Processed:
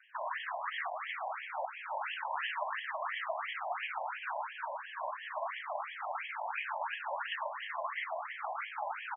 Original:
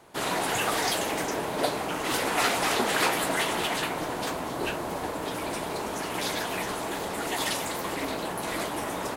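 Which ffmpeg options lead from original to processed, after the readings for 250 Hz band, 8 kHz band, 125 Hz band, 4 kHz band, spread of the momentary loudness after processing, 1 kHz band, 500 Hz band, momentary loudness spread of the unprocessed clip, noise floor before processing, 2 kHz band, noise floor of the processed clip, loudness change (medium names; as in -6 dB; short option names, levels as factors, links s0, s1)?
under -40 dB, under -40 dB, under -40 dB, -15.0 dB, 3 LU, -6.5 dB, -12.5 dB, 7 LU, -34 dBFS, -7.5 dB, -47 dBFS, -10.0 dB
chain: -filter_complex "[0:a]afftfilt=real='re*pow(10,7/40*sin(2*PI*(1.3*log(max(b,1)*sr/1024/100)/log(2)-(0.42)*(pts-256)/sr)))':imag='im*pow(10,7/40*sin(2*PI*(1.3*log(max(b,1)*sr/1024/100)/log(2)-(0.42)*(pts-256)/sr)))':win_size=1024:overlap=0.75,bandreject=f=244:t=h:w=4,bandreject=f=488:t=h:w=4,bandreject=f=732:t=h:w=4,bandreject=f=976:t=h:w=4,bandreject=f=1220:t=h:w=4,bandreject=f=1464:t=h:w=4,bandreject=f=1708:t=h:w=4,bandreject=f=1952:t=h:w=4,bandreject=f=2196:t=h:w=4,bandreject=f=2440:t=h:w=4,bandreject=f=2684:t=h:w=4,alimiter=limit=0.0708:level=0:latency=1:release=468,asplit=2[s0][s1];[s1]aecho=0:1:323:0.316[s2];[s0][s2]amix=inputs=2:normalize=0,afftfilt=real='re*between(b*sr/1024,740*pow(2400/740,0.5+0.5*sin(2*PI*2.9*pts/sr))/1.41,740*pow(2400/740,0.5+0.5*sin(2*PI*2.9*pts/sr))*1.41)':imag='im*between(b*sr/1024,740*pow(2400/740,0.5+0.5*sin(2*PI*2.9*pts/sr))/1.41,740*pow(2400/740,0.5+0.5*sin(2*PI*2.9*pts/sr))*1.41)':win_size=1024:overlap=0.75,volume=1.19"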